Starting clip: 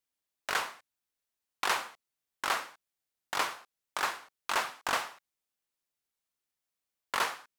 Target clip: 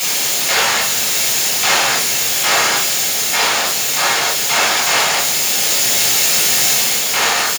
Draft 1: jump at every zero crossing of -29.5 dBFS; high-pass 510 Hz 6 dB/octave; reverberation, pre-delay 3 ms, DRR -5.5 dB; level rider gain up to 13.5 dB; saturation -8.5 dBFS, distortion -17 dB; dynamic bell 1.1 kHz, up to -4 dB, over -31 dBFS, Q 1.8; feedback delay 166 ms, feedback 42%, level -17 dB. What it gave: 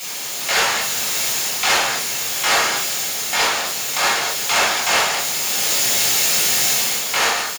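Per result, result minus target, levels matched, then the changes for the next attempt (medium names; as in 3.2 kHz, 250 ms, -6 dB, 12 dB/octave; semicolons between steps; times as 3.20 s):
saturation: distortion +12 dB; jump at every zero crossing: distortion -6 dB
change: saturation -0.5 dBFS, distortion -29 dB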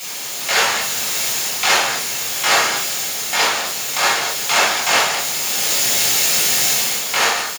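jump at every zero crossing: distortion -6 dB
change: jump at every zero crossing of -18 dBFS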